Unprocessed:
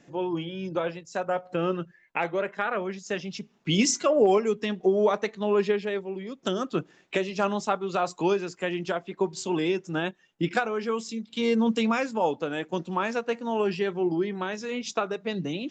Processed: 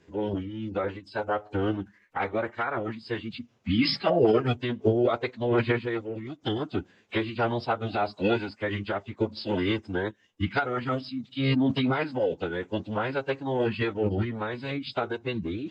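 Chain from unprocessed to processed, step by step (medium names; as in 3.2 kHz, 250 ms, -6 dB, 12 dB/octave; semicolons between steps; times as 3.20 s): formant-preserving pitch shift -9.5 st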